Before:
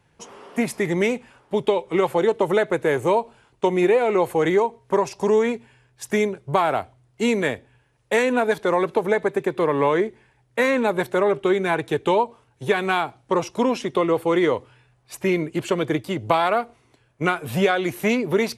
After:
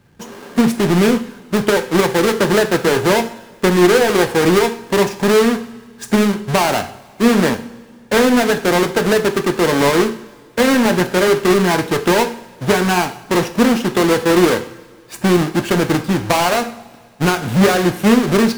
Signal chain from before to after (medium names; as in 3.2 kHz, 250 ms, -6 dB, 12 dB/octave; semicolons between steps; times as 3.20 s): square wave that keeps the level; small resonant body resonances 220/1600 Hz, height 10 dB, ringing for 40 ms; in parallel at -9 dB: wavefolder -17 dBFS; on the sum: two-slope reverb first 0.51 s, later 2.2 s, from -18 dB, DRR 6.5 dB; loudspeaker Doppler distortion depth 0.35 ms; trim -1 dB